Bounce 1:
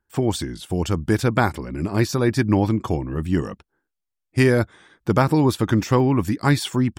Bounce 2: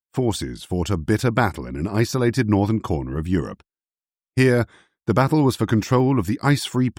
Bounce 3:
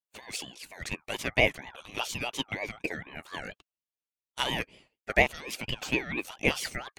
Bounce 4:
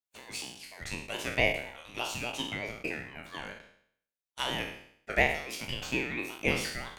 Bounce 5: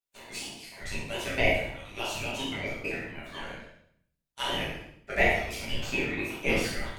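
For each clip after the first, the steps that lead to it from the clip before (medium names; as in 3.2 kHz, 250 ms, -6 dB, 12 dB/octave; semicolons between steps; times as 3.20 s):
expander -37 dBFS
LFO high-pass saw down 0.57 Hz 660–1800 Hz; ring modulator with a swept carrier 1.2 kHz, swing 20%, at 4.2 Hz; trim -4 dB
spectral sustain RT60 0.63 s; trim -5 dB
simulated room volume 74 m³, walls mixed, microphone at 1.2 m; trim -3.5 dB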